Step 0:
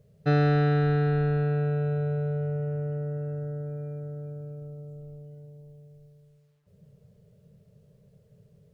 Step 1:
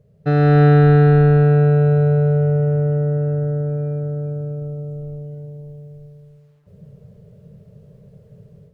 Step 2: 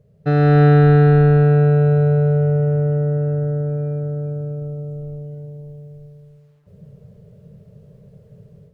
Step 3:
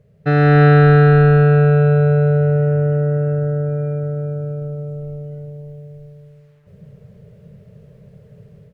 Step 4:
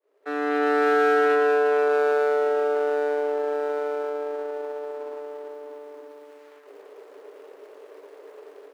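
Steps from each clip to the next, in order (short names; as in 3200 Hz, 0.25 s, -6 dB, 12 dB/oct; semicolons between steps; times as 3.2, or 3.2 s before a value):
high shelf 2300 Hz -9.5 dB; AGC gain up to 9 dB; gain +4 dB
nothing audible
bell 2000 Hz +7.5 dB 1.4 oct; echo 0.339 s -12 dB; gain +1 dB
opening faded in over 1.52 s; power-law curve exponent 0.7; rippled Chebyshev high-pass 280 Hz, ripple 6 dB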